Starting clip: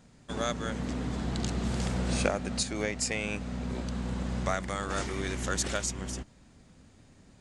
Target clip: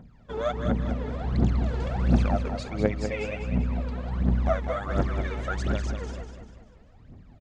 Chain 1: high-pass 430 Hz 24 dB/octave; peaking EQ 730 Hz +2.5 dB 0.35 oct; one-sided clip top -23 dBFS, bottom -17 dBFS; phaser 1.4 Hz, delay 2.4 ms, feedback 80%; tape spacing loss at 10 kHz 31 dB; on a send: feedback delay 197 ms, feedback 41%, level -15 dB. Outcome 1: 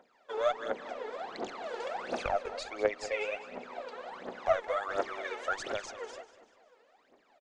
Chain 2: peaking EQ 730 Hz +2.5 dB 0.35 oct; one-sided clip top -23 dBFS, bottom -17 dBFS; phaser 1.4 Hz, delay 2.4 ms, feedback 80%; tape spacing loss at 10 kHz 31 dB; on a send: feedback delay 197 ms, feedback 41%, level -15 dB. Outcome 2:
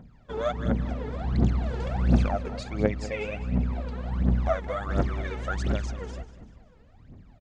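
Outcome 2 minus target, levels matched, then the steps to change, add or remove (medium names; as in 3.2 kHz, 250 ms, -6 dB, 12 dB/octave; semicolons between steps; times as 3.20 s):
echo-to-direct -7.5 dB
change: feedback delay 197 ms, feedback 41%, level -7.5 dB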